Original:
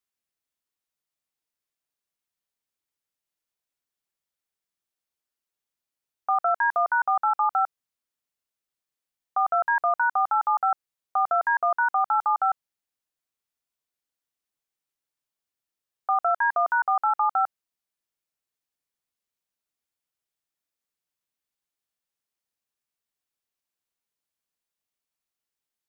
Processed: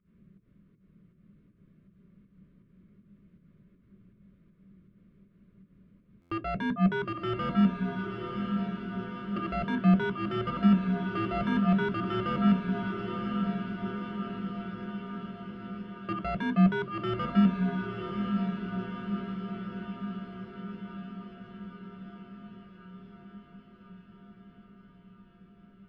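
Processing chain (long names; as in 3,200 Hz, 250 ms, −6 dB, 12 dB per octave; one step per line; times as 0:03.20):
spectral tilt −5 dB per octave
in parallel at +0.5 dB: compressor whose output falls as the input rises −34 dBFS, ratio −1
on the sum: brickwall limiter −18 dBFS, peak gain reduction 6 dB
fake sidechain pumping 160 BPM, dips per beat 1, −24 dB, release 148 ms
soft clipping −32.5 dBFS, distortion −7 dB
Butterworth band-reject 810 Hz, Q 1.7
high-frequency loss of the air 460 metres
feedback delay with all-pass diffusion 1,007 ms, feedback 65%, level −5.5 dB
on a send at −5 dB: convolution reverb RT60 0.20 s, pre-delay 3 ms
on the sum: buffer that repeats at 0:06.21, samples 512, times 8
level +8.5 dB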